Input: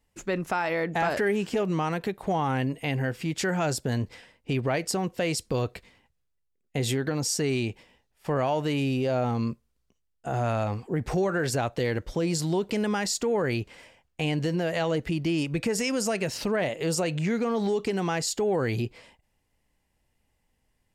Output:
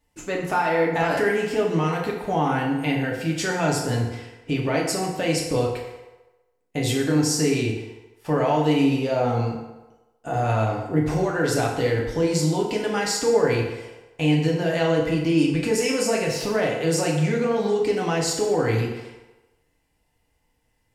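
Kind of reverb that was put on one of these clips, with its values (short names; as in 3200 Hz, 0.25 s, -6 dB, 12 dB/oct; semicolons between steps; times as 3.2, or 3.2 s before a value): FDN reverb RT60 1.1 s, low-frequency decay 0.7×, high-frequency decay 0.7×, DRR -2.5 dB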